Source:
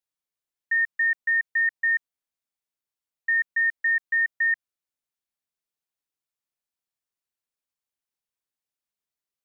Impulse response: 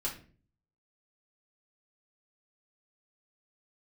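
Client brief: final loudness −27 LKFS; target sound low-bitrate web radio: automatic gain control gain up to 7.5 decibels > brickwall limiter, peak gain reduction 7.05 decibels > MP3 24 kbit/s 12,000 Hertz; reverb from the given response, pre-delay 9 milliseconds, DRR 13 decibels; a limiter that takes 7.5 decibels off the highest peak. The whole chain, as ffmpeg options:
-filter_complex "[0:a]alimiter=level_in=2dB:limit=-24dB:level=0:latency=1,volume=-2dB,asplit=2[link_01][link_02];[1:a]atrim=start_sample=2205,adelay=9[link_03];[link_02][link_03]afir=irnorm=-1:irlink=0,volume=-16dB[link_04];[link_01][link_04]amix=inputs=2:normalize=0,dynaudnorm=maxgain=7.5dB,alimiter=level_in=9dB:limit=-24dB:level=0:latency=1,volume=-9dB,volume=11.5dB" -ar 12000 -c:a libmp3lame -b:a 24k

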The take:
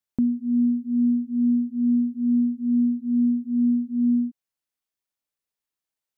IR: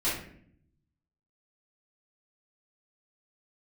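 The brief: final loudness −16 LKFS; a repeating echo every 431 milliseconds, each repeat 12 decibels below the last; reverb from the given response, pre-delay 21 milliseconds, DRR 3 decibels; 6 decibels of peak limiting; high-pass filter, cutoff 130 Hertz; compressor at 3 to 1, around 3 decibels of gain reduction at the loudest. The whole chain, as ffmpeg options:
-filter_complex "[0:a]highpass=130,acompressor=threshold=-22dB:ratio=3,alimiter=limit=-22.5dB:level=0:latency=1,aecho=1:1:431|862|1293:0.251|0.0628|0.0157,asplit=2[link_01][link_02];[1:a]atrim=start_sample=2205,adelay=21[link_03];[link_02][link_03]afir=irnorm=-1:irlink=0,volume=-12.5dB[link_04];[link_01][link_04]amix=inputs=2:normalize=0,volume=14.5dB"

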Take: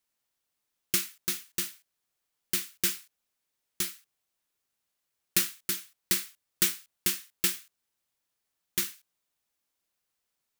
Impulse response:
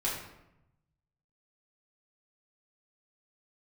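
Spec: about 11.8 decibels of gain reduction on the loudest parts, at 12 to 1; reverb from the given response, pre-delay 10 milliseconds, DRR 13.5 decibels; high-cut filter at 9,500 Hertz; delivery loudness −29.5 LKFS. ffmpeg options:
-filter_complex "[0:a]lowpass=9500,acompressor=threshold=-36dB:ratio=12,asplit=2[link_01][link_02];[1:a]atrim=start_sample=2205,adelay=10[link_03];[link_02][link_03]afir=irnorm=-1:irlink=0,volume=-20dB[link_04];[link_01][link_04]amix=inputs=2:normalize=0,volume=13.5dB"

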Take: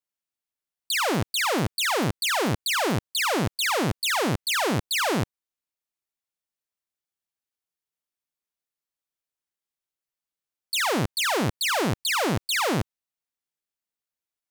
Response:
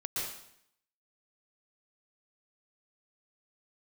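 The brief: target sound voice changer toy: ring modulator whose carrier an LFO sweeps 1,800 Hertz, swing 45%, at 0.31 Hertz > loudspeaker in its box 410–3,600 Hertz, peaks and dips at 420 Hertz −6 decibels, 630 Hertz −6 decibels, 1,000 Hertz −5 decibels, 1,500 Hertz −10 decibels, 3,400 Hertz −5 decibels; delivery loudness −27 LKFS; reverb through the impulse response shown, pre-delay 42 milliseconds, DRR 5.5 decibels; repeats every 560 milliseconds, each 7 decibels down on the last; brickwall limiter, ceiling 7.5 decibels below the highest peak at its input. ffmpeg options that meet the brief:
-filter_complex "[0:a]alimiter=level_in=2.5dB:limit=-24dB:level=0:latency=1,volume=-2.5dB,aecho=1:1:560|1120|1680|2240|2800:0.447|0.201|0.0905|0.0407|0.0183,asplit=2[link_01][link_02];[1:a]atrim=start_sample=2205,adelay=42[link_03];[link_02][link_03]afir=irnorm=-1:irlink=0,volume=-9.5dB[link_04];[link_01][link_04]amix=inputs=2:normalize=0,aeval=exprs='val(0)*sin(2*PI*1800*n/s+1800*0.45/0.31*sin(2*PI*0.31*n/s))':channel_layout=same,highpass=410,equalizer=frequency=420:width_type=q:width=4:gain=-6,equalizer=frequency=630:width_type=q:width=4:gain=-6,equalizer=frequency=1000:width_type=q:width=4:gain=-5,equalizer=frequency=1500:width_type=q:width=4:gain=-10,equalizer=frequency=3400:width_type=q:width=4:gain=-5,lowpass=frequency=3600:width=0.5412,lowpass=frequency=3600:width=1.3066,volume=10.5dB"

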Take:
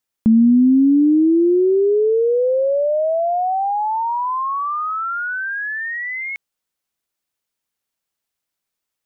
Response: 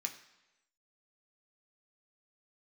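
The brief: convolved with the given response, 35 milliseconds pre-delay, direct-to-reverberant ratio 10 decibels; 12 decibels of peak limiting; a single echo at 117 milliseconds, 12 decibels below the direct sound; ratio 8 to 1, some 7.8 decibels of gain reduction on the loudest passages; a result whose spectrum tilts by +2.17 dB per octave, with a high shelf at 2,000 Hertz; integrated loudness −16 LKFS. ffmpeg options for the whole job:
-filter_complex "[0:a]highshelf=frequency=2000:gain=-4.5,acompressor=threshold=-19dB:ratio=8,alimiter=limit=-21dB:level=0:latency=1,aecho=1:1:117:0.251,asplit=2[link_01][link_02];[1:a]atrim=start_sample=2205,adelay=35[link_03];[link_02][link_03]afir=irnorm=-1:irlink=0,volume=-9.5dB[link_04];[link_01][link_04]amix=inputs=2:normalize=0,volume=8dB"

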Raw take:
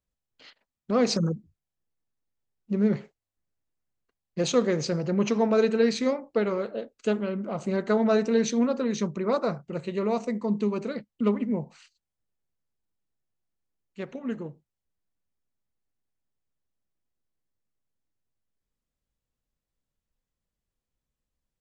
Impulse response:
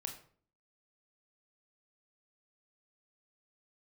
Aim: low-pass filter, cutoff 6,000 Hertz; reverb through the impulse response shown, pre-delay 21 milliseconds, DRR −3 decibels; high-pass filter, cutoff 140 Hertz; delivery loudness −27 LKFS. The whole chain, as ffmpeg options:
-filter_complex "[0:a]highpass=140,lowpass=6000,asplit=2[link_01][link_02];[1:a]atrim=start_sample=2205,adelay=21[link_03];[link_02][link_03]afir=irnorm=-1:irlink=0,volume=5dB[link_04];[link_01][link_04]amix=inputs=2:normalize=0,volume=-4dB"

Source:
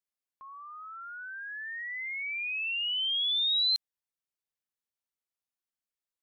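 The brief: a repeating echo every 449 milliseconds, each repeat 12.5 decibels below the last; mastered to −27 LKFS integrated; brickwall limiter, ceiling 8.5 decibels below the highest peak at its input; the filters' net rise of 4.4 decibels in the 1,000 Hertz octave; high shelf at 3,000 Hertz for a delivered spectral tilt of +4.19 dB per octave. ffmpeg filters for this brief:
ffmpeg -i in.wav -af "equalizer=frequency=1000:width_type=o:gain=4.5,highshelf=frequency=3000:gain=8,alimiter=level_in=1.5dB:limit=-24dB:level=0:latency=1,volume=-1.5dB,aecho=1:1:449|898|1347:0.237|0.0569|0.0137,volume=1.5dB" out.wav

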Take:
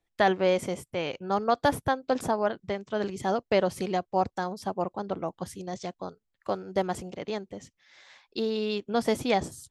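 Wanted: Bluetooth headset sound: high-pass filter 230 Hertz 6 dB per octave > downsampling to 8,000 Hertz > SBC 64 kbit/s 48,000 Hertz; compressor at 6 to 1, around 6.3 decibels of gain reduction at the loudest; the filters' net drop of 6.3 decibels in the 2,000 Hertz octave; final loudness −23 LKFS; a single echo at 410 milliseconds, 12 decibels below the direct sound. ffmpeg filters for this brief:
ffmpeg -i in.wav -af "equalizer=frequency=2000:width_type=o:gain=-8,acompressor=threshold=-26dB:ratio=6,highpass=frequency=230:poles=1,aecho=1:1:410:0.251,aresample=8000,aresample=44100,volume=12dB" -ar 48000 -c:a sbc -b:a 64k out.sbc

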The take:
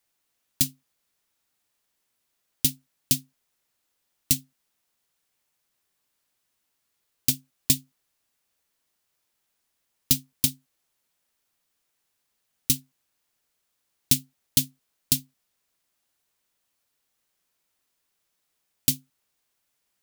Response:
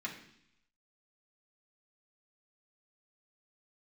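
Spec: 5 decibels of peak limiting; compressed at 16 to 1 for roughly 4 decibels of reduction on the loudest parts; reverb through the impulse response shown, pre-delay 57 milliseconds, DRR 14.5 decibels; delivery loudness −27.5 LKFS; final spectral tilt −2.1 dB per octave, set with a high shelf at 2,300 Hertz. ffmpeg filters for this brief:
-filter_complex "[0:a]highshelf=frequency=2300:gain=-4,acompressor=threshold=-23dB:ratio=16,alimiter=limit=-11.5dB:level=0:latency=1,asplit=2[link_01][link_02];[1:a]atrim=start_sample=2205,adelay=57[link_03];[link_02][link_03]afir=irnorm=-1:irlink=0,volume=-16.5dB[link_04];[link_01][link_04]amix=inputs=2:normalize=0,volume=8.5dB"

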